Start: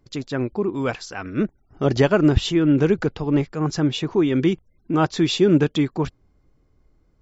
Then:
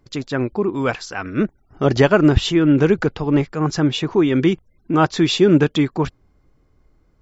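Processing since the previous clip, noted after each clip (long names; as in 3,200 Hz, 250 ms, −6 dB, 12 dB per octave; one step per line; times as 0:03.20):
parametric band 1,400 Hz +3 dB 2 octaves
level +2.5 dB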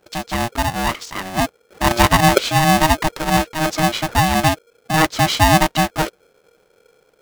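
ring modulator with a square carrier 470 Hz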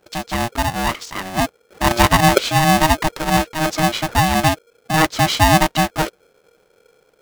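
no processing that can be heard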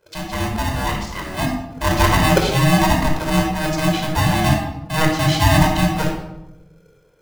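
rectangular room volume 3,000 cubic metres, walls furnished, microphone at 5 metres
level −6.5 dB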